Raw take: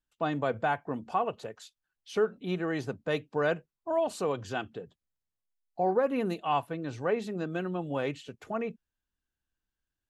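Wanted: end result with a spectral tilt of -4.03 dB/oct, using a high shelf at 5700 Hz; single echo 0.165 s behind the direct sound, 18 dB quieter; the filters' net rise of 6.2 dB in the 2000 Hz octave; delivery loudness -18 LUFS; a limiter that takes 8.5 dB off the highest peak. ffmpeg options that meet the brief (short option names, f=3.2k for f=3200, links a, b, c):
-af "equalizer=f=2k:t=o:g=8,highshelf=f=5.7k:g=7.5,alimiter=limit=-20.5dB:level=0:latency=1,aecho=1:1:165:0.126,volume=15dB"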